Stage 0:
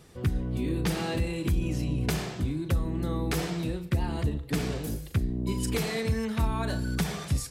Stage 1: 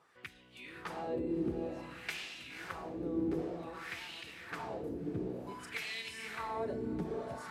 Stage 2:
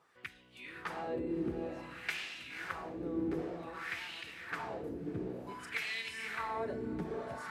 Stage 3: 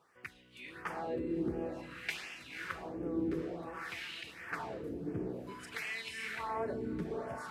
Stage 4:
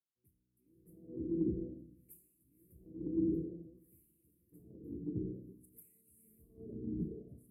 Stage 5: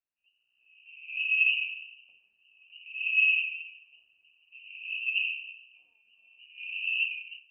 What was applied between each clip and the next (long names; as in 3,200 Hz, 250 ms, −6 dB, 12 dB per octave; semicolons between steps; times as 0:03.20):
high-shelf EQ 7,100 Hz +10.5 dB; on a send: feedback delay with all-pass diffusion 564 ms, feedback 46%, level −3 dB; on the sum: LFO wah 0.54 Hz 330–2,900 Hz, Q 2.4; level −1 dB
dynamic equaliser 1,700 Hz, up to +6 dB, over −54 dBFS, Q 0.93; level −1.5 dB
auto-filter notch sine 1.4 Hz 730–4,000 Hz; level +1 dB
inverse Chebyshev band-stop filter 800–6,000 Hz, stop band 50 dB; mains-hum notches 50/100/150/200/250 Hz; multiband upward and downward expander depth 70%
automatic gain control gain up to 9 dB; voice inversion scrambler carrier 2,900 Hz